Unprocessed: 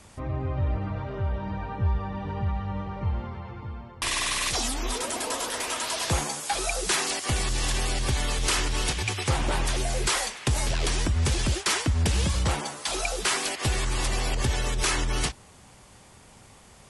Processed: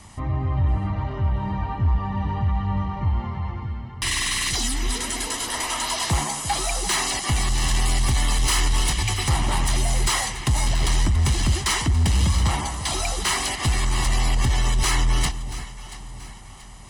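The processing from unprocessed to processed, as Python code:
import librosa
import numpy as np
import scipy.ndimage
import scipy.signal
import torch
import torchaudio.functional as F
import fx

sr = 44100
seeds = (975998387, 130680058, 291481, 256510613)

y = fx.spec_box(x, sr, start_s=3.63, length_s=1.85, low_hz=500.0, high_hz=1300.0, gain_db=-7)
y = fx.high_shelf(y, sr, hz=11000.0, db=8.5, at=(7.85, 10.08))
y = 10.0 ** (-20.5 / 20.0) * np.tanh(y / 10.0 ** (-20.5 / 20.0))
y = y + 0.57 * np.pad(y, (int(1.0 * sr / 1000.0), 0))[:len(y)]
y = fx.echo_alternate(y, sr, ms=341, hz=850.0, feedback_pct=64, wet_db=-11.0)
y = y * librosa.db_to_amplitude(3.5)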